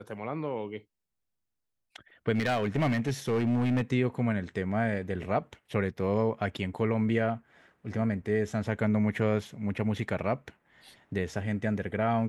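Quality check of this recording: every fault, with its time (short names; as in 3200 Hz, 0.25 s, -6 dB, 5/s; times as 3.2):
2.34–3.82 clipped -22.5 dBFS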